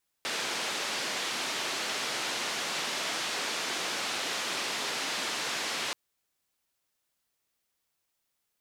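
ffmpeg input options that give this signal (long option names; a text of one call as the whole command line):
ffmpeg -f lavfi -i "anoisesrc=color=white:duration=5.68:sample_rate=44100:seed=1,highpass=frequency=240,lowpass=frequency=4800,volume=-21.7dB" out.wav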